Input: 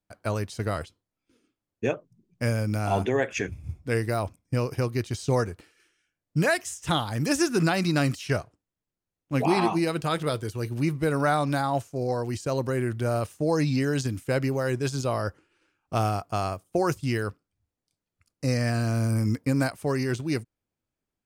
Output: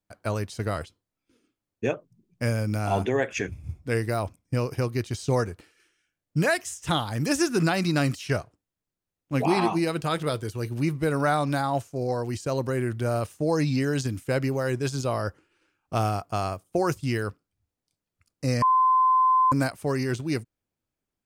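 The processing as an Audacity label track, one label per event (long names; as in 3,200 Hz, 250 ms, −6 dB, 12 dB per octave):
18.620000	19.520000	beep over 1,030 Hz −16.5 dBFS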